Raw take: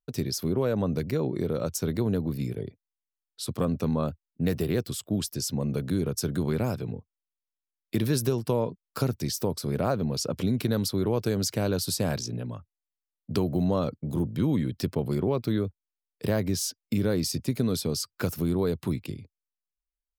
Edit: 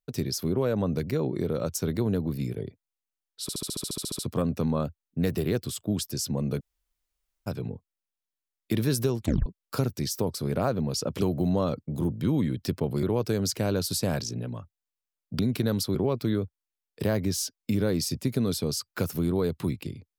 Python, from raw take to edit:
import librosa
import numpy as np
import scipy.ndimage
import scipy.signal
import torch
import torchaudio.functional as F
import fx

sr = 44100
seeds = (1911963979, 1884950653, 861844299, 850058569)

y = fx.edit(x, sr, fx.stutter(start_s=3.42, slice_s=0.07, count=12),
    fx.room_tone_fill(start_s=5.83, length_s=0.87, crossfade_s=0.02),
    fx.tape_stop(start_s=8.42, length_s=0.27),
    fx.swap(start_s=10.44, length_s=0.56, other_s=13.36, other_length_s=1.82), tone=tone)